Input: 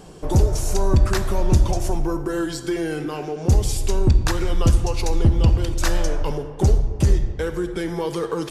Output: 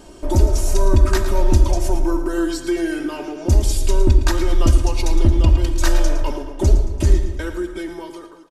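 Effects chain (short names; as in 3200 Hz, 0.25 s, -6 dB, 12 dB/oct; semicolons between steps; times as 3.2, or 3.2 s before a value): ending faded out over 1.18 s; comb 3.2 ms, depth 87%; feedback echo 0.112 s, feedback 47%, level -12 dB; gain -1 dB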